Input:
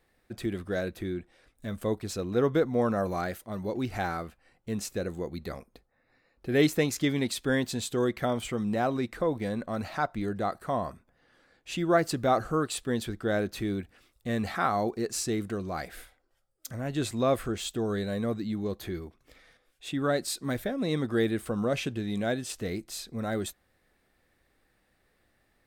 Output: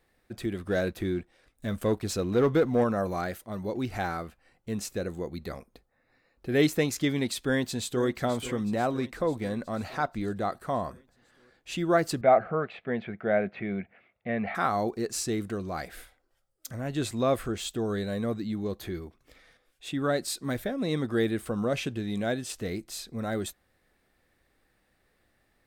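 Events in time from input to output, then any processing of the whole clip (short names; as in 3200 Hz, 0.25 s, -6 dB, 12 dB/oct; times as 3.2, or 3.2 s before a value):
0.66–2.84 sample leveller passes 1
7.28–8.07 echo throw 0.49 s, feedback 65%, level -14 dB
12.21–14.55 speaker cabinet 150–2500 Hz, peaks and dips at 190 Hz +5 dB, 300 Hz -10 dB, 670 Hz +9 dB, 1100 Hz -4 dB, 2200 Hz +9 dB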